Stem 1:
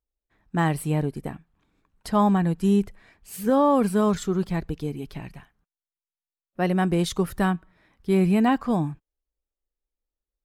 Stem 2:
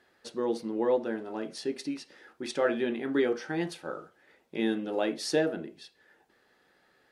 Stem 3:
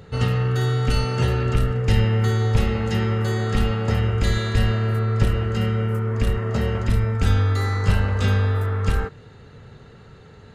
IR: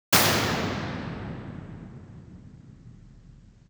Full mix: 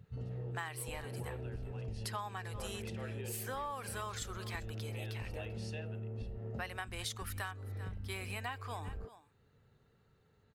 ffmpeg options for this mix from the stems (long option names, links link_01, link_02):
-filter_complex "[0:a]highpass=1300,volume=2dB,asplit=2[link_01][link_02];[link_02]volume=-22dB[link_03];[1:a]highpass=560,equalizer=frequency=2700:width=4.6:gain=14,volume=-4.5dB,asplit=2[link_04][link_05];[link_05]volume=-10.5dB[link_06];[2:a]alimiter=limit=-12.5dB:level=0:latency=1:release=217,volume=-8dB[link_07];[link_04][link_07]amix=inputs=2:normalize=0,afwtdn=0.0282,acompressor=threshold=-53dB:ratio=1.5,volume=0dB[link_08];[link_03][link_06]amix=inputs=2:normalize=0,aecho=0:1:391:1[link_09];[link_01][link_08][link_09]amix=inputs=3:normalize=0,acompressor=threshold=-38dB:ratio=6"